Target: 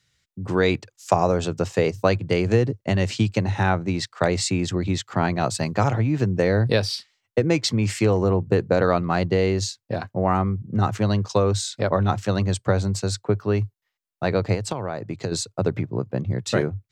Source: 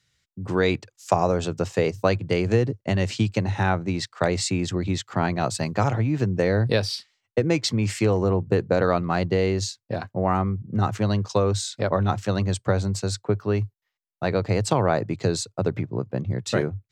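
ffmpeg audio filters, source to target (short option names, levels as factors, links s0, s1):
-filter_complex "[0:a]asettb=1/sr,asplit=3[s0][s1][s2];[s0]atrim=end=14.544[s3];[s1]atrim=start=14.54:end=15.32,asetpts=PTS-STARTPTS,afade=t=in:d=0.004:c=qsin,afade=t=out:st=0.776:d=0.004:c=qsin,acompressor=threshold=0.0501:ratio=6[s4];[s2]atrim=start=15.316[s5];[s3][s4]acrossfade=d=0.004:c1=hsin:c2=qsin[s6];[s6][s5]acrossfade=d=0.004:c1=qsin:c2=hsin,volume=1.19"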